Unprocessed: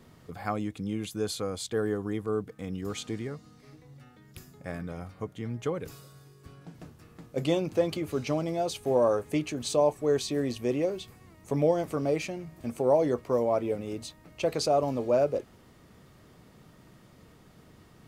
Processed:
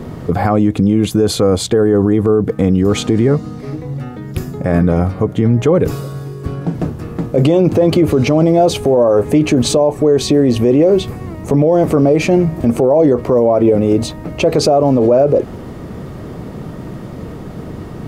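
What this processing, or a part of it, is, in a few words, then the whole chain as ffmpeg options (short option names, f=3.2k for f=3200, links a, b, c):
mastering chain: -af "equalizer=f=400:t=o:w=1.6:g=2,acompressor=threshold=-26dB:ratio=2.5,tiltshelf=f=1.4k:g=6.5,alimiter=level_in=23.5dB:limit=-1dB:release=50:level=0:latency=1,volume=-2.5dB"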